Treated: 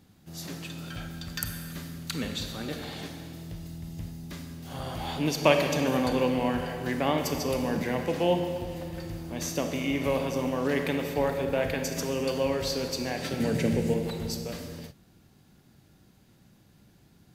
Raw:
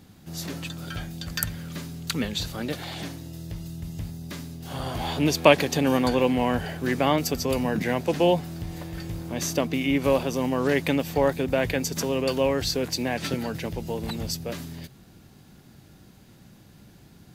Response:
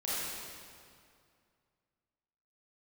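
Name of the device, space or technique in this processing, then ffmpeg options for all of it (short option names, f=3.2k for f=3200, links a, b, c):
keyed gated reverb: -filter_complex "[0:a]asettb=1/sr,asplit=3[a][b][c];[a]atrim=end=13.404[d];[b]atrim=start=13.4:end=13.94,asetpts=PTS-STARTPTS,afade=t=in:d=0.004:c=qsin,afade=t=out:st=0.536:d=0.004:c=qsin,equalizer=f=125:t=o:w=1:g=10,equalizer=f=250:t=o:w=1:g=8,equalizer=f=500:t=o:w=1:g=9,equalizer=f=1k:t=o:w=1:g=-6,equalizer=f=2k:t=o:w=1:g=8,equalizer=f=8k:t=o:w=1:g=11[e];[c]atrim=start=13.936[f];[d][e]acrossfade=d=0.004:c1=hsin:c2=qsin[g];[g][f]acrossfade=d=0.004:c1=qsin:c2=hsin,asplit=3[h][i][j];[1:a]atrim=start_sample=2205[k];[i][k]afir=irnorm=-1:irlink=0[l];[j]apad=whole_len=765100[m];[l][m]sidechaingate=range=-33dB:threshold=-42dB:ratio=16:detection=peak,volume=-7.5dB[n];[h][n]amix=inputs=2:normalize=0,volume=-7.5dB"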